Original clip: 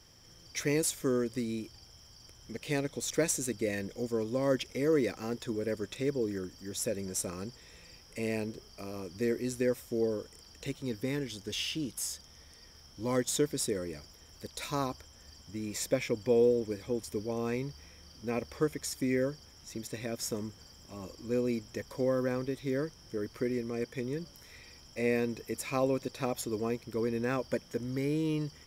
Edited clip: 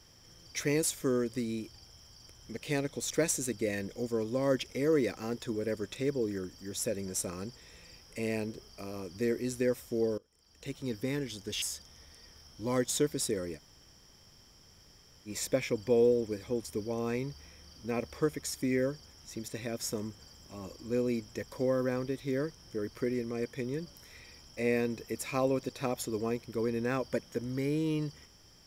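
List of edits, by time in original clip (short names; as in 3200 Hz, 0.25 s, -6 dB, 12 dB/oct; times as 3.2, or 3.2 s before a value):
10.18–10.79 fade in quadratic, from -22 dB
11.62–12.01 cut
13.96–15.67 room tone, crossfade 0.06 s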